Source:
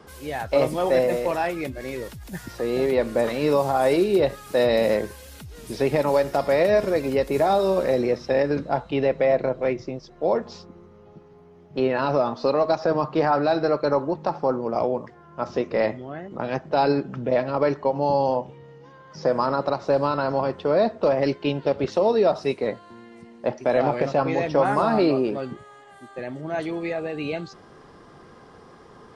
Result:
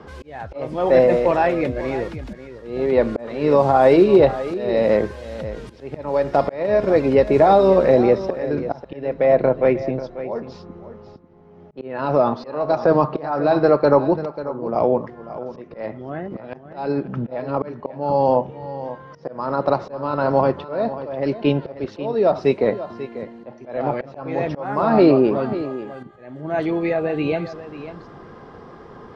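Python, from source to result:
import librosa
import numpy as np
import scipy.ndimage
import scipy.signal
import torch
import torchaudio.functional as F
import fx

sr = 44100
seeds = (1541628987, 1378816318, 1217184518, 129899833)

y = scipy.signal.sosfilt(scipy.signal.butter(2, 5500.0, 'lowpass', fs=sr, output='sos'), x)
y = fx.high_shelf(y, sr, hz=2700.0, db=-9.5)
y = fx.auto_swell(y, sr, attack_ms=491.0)
y = y + 10.0 ** (-13.5 / 20.0) * np.pad(y, (int(541 * sr / 1000.0), 0))[:len(y)]
y = F.gain(torch.from_numpy(y), 7.5).numpy()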